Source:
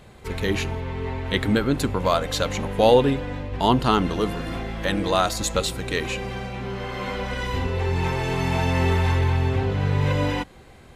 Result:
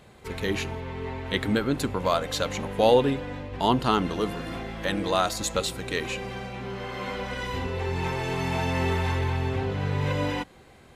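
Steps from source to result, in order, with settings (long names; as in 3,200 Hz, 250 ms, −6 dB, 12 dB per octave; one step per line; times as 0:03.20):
low-shelf EQ 76 Hz −8.5 dB
level −3 dB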